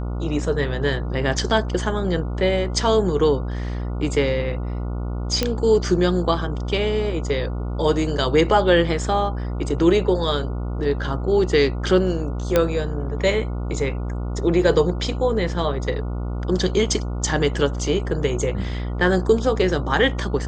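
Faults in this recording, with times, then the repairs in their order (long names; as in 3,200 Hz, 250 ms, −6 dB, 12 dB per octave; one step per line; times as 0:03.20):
mains buzz 60 Hz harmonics 24 −26 dBFS
0:05.43: click −6 dBFS
0:12.56: click −4 dBFS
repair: click removal
hum removal 60 Hz, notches 24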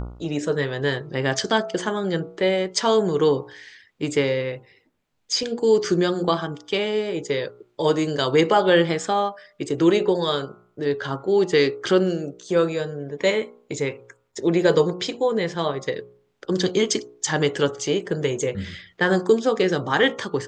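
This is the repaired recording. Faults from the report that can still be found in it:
none of them is left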